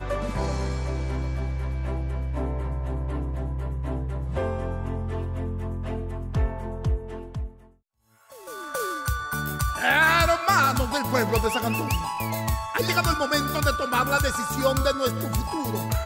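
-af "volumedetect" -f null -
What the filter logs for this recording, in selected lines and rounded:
mean_volume: -25.8 dB
max_volume: -8.9 dB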